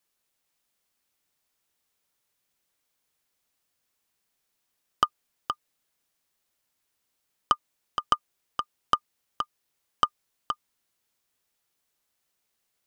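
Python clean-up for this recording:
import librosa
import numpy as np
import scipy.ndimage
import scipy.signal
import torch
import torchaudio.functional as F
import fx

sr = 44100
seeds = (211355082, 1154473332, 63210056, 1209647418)

y = fx.fix_declip(x, sr, threshold_db=-7.5)
y = fx.fix_echo_inverse(y, sr, delay_ms=470, level_db=-7.5)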